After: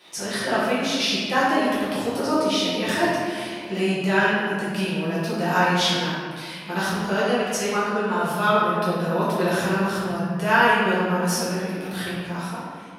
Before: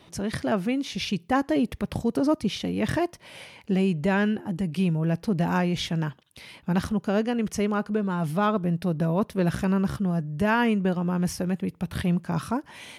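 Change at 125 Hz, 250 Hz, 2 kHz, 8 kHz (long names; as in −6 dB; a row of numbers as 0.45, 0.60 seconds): −2.5, −1.0, +10.0, +9.0 decibels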